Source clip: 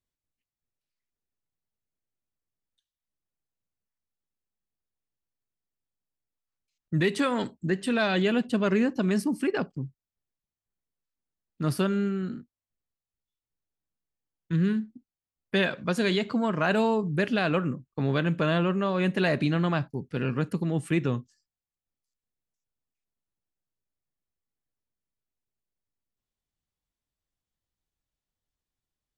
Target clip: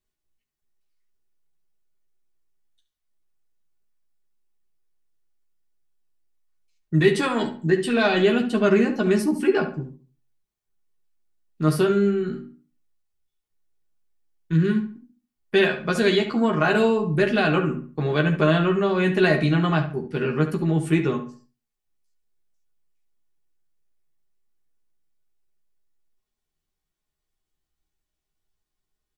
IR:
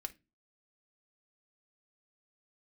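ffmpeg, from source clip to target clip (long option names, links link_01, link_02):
-filter_complex "[0:a]asplit=2[link_01][link_02];[link_02]adelay=13,volume=-5dB[link_03];[link_01][link_03]amix=inputs=2:normalize=0,asplit=2[link_04][link_05];[link_05]adelay=70,lowpass=frequency=2900:poles=1,volume=-9.5dB,asplit=2[link_06][link_07];[link_07]adelay=70,lowpass=frequency=2900:poles=1,volume=0.33,asplit=2[link_08][link_09];[link_09]adelay=70,lowpass=frequency=2900:poles=1,volume=0.33,asplit=2[link_10][link_11];[link_11]adelay=70,lowpass=frequency=2900:poles=1,volume=0.33[link_12];[link_04][link_06][link_08][link_10][link_12]amix=inputs=5:normalize=0[link_13];[1:a]atrim=start_sample=2205[link_14];[link_13][link_14]afir=irnorm=-1:irlink=0,volume=6dB"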